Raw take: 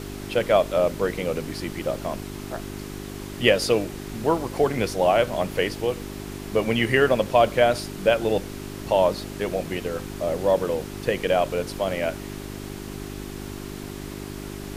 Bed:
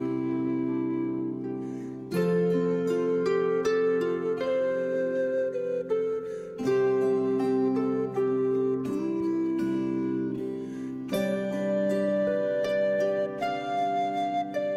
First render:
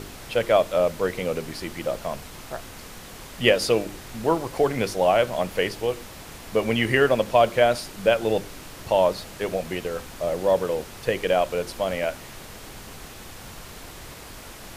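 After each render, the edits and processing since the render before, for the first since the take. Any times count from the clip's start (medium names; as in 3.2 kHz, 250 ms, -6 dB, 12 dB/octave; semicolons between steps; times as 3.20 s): de-hum 50 Hz, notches 8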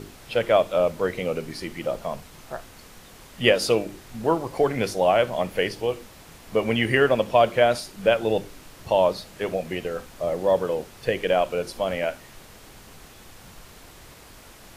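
noise print and reduce 6 dB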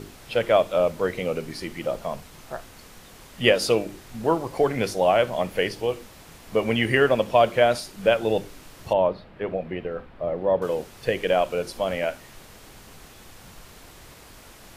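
8.93–10.62 s: distance through air 450 m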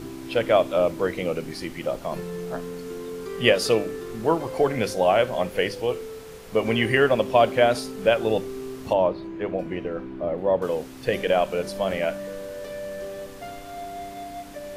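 add bed -8.5 dB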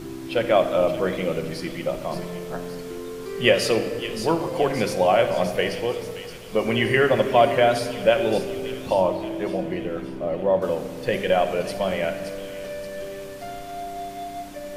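feedback echo behind a high-pass 573 ms, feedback 52%, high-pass 3 kHz, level -7 dB; simulated room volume 2600 m³, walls mixed, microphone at 0.97 m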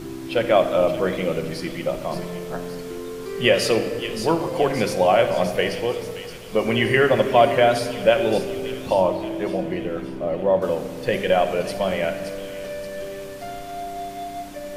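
trim +1.5 dB; peak limiter -3 dBFS, peak gain reduction 2.5 dB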